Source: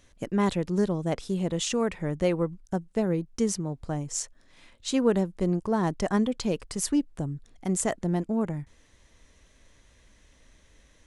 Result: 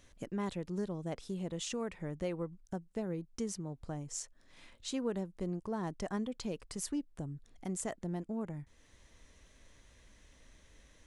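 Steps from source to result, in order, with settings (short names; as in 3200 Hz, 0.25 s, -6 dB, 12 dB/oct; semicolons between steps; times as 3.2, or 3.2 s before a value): compressor 1.5:1, threshold -48 dBFS, peak gain reduction 11 dB; gain -2.5 dB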